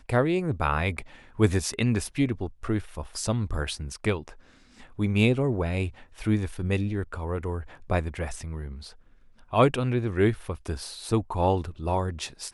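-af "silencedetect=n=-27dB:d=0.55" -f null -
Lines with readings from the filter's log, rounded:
silence_start: 4.29
silence_end: 4.99 | silence_duration: 0.70
silence_start: 8.65
silence_end: 9.53 | silence_duration: 0.89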